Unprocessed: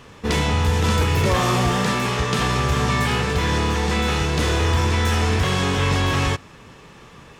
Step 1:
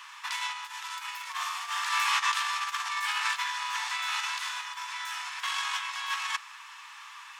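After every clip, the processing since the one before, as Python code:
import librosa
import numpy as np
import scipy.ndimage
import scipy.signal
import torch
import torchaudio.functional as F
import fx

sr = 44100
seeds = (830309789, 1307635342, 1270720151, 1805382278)

y = fx.over_compress(x, sr, threshold_db=-23.0, ratio=-0.5)
y = scipy.signal.sosfilt(scipy.signal.ellip(4, 1.0, 50, 960.0, 'highpass', fs=sr, output='sos'), y)
y = y * 10.0 ** (-2.0 / 20.0)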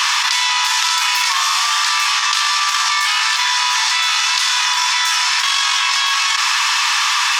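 y = fx.peak_eq(x, sr, hz=5100.0, db=10.0, octaves=1.2)
y = fx.env_flatten(y, sr, amount_pct=100)
y = y * 10.0 ** (5.0 / 20.0)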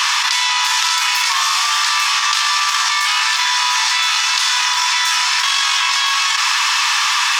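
y = fx.echo_crushed(x, sr, ms=599, feedback_pct=55, bits=6, wet_db=-13.5)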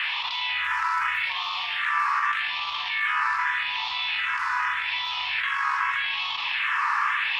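y = fx.phaser_stages(x, sr, stages=4, low_hz=550.0, high_hz=1600.0, hz=0.83, feedback_pct=25)
y = fx.air_absorb(y, sr, metres=480.0)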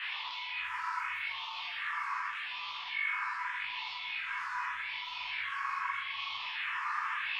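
y = fx.comb_fb(x, sr, f0_hz=100.0, decay_s=0.21, harmonics='all', damping=0.0, mix_pct=90)
y = fx.detune_double(y, sr, cents=38)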